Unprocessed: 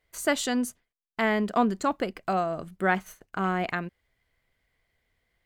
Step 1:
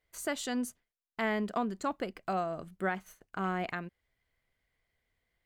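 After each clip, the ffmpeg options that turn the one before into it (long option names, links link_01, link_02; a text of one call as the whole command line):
ffmpeg -i in.wav -af "alimiter=limit=-15dB:level=0:latency=1:release=330,volume=-6dB" out.wav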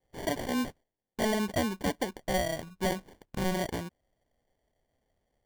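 ffmpeg -i in.wav -af "acrusher=samples=34:mix=1:aa=0.000001,volume=3dB" out.wav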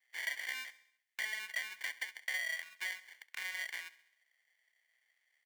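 ffmpeg -i in.wav -af "acompressor=threshold=-38dB:ratio=6,highpass=frequency=2000:width_type=q:width=4.2,aecho=1:1:67|134|201|268|335:0.133|0.072|0.0389|0.021|0.0113,volume=2.5dB" out.wav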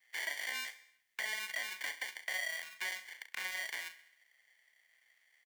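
ffmpeg -i in.wav -filter_complex "[0:a]acrossover=split=1200|2700[link_01][link_02][link_03];[link_02]acompressor=threshold=-51dB:ratio=6[link_04];[link_03]alimiter=level_in=14.5dB:limit=-24dB:level=0:latency=1:release=35,volume=-14.5dB[link_05];[link_01][link_04][link_05]amix=inputs=3:normalize=0,asplit=2[link_06][link_07];[link_07]adelay=37,volume=-9.5dB[link_08];[link_06][link_08]amix=inputs=2:normalize=0,volume=6.5dB" out.wav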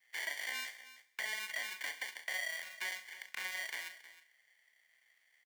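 ffmpeg -i in.wav -af "aecho=1:1:314:0.168,volume=-1dB" out.wav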